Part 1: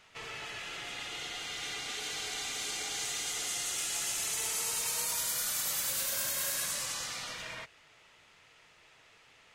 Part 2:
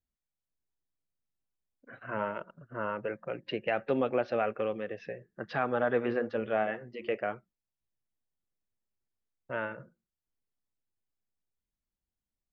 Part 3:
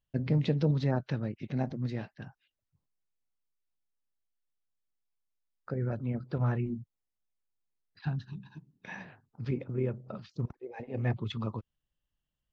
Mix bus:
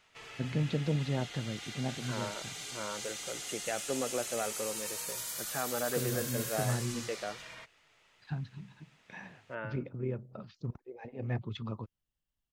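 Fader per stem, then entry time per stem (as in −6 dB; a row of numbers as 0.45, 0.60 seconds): −6.0, −6.0, −4.0 decibels; 0.00, 0.00, 0.25 seconds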